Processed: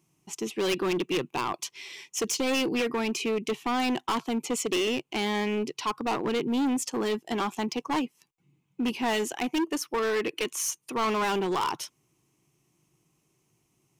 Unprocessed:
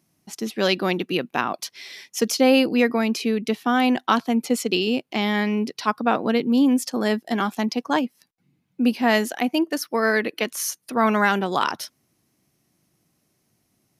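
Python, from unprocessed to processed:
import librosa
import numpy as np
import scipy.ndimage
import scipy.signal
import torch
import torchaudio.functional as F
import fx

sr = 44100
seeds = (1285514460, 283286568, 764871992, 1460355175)

y = fx.ripple_eq(x, sr, per_octave=0.7, db=9)
y = np.clip(10.0 ** (20.5 / 20.0) * y, -1.0, 1.0) / 10.0 ** (20.5 / 20.0)
y = y * librosa.db_to_amplitude(-3.0)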